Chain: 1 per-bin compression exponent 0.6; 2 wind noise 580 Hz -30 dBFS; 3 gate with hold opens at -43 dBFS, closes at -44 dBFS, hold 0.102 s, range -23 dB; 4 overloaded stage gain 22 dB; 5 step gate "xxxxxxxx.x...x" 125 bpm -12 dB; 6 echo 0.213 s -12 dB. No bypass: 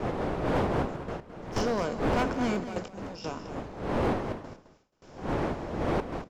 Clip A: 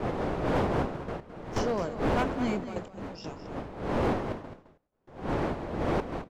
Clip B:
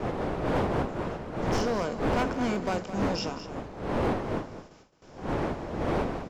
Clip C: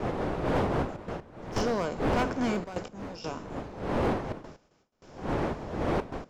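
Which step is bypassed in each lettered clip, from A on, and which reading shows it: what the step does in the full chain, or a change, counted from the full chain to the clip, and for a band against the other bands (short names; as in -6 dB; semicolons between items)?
1, 8 kHz band -2.0 dB; 5, 4 kHz band +1.5 dB; 6, crest factor change -1.5 dB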